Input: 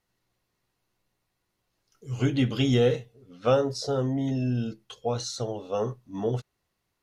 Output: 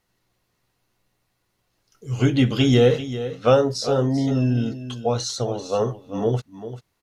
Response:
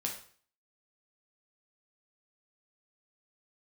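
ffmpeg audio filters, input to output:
-af "aecho=1:1:392:0.237,volume=6dB"

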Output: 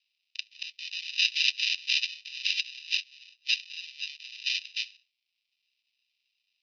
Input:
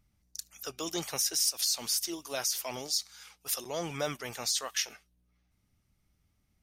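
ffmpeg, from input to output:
-af "aemphasis=mode=production:type=75kf,acrusher=samples=40:mix=1:aa=0.000001,asuperpass=centerf=3600:order=12:qfactor=1.1,volume=7dB"

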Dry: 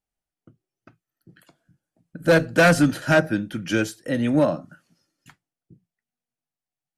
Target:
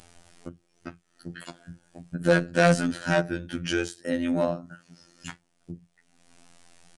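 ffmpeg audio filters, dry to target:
-af "acompressor=mode=upward:threshold=-18dB:ratio=2.5,afftfilt=real='hypot(re,im)*cos(PI*b)':imag='0':win_size=2048:overlap=0.75,aresample=22050,aresample=44100,volume=-1.5dB"

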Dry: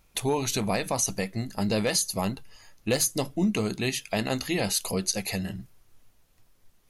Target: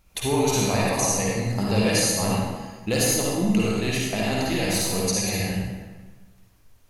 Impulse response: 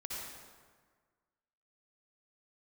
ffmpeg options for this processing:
-filter_complex "[0:a]asettb=1/sr,asplit=3[a][b][c];[a]atrim=end=3.044[d];[b]atrim=start=3.04:end=5.02,asetpts=PTS-STARTPTS,afade=t=in:d=0.004:c=qsin,afade=t=out:st=1.976:d=0.004:c=qsin,aeval=exprs='if(lt(val(0),0),0.708*val(0),val(0))':c=same[e];[c]atrim=start=5.016[f];[d][e]acrossfade=d=0.004:c1=hsin:c2=qsin[g];[g][f]acrossfade=d=0.004:c1=qsin:c2=hsin,lowshelf=f=140:g=3[h];[1:a]atrim=start_sample=2205,asetrate=52920,aresample=44100[i];[h][i]afir=irnorm=-1:irlink=0,volume=6.5dB"

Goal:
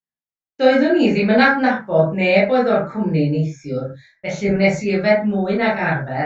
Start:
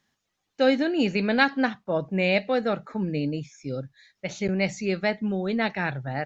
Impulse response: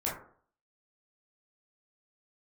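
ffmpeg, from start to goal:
-filter_complex "[0:a]agate=range=-33dB:threshold=-50dB:ratio=3:detection=peak[a];[1:a]atrim=start_sample=2205,atrim=end_sample=6615[b];[a][b]afir=irnorm=-1:irlink=0,volume=2.5dB"

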